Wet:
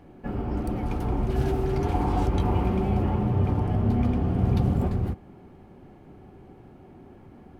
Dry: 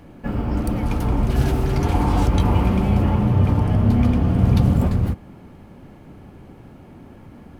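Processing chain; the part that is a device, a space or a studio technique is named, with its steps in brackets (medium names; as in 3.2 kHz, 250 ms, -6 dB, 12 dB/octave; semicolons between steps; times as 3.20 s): inside a helmet (treble shelf 4 kHz -5.5 dB; small resonant body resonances 380/750 Hz, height 8 dB); trim -7 dB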